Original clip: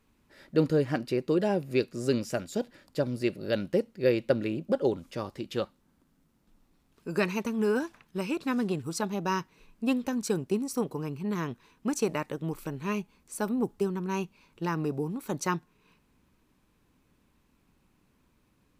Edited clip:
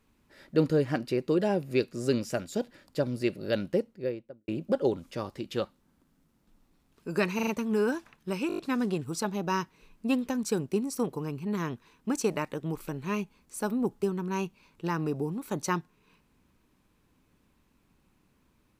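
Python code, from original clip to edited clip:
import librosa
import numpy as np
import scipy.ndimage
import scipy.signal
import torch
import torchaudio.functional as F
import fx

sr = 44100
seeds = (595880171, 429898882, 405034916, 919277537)

y = fx.studio_fade_out(x, sr, start_s=3.59, length_s=0.89)
y = fx.edit(y, sr, fx.stutter(start_s=7.35, slice_s=0.04, count=4),
    fx.stutter(start_s=8.36, slice_s=0.02, count=6), tone=tone)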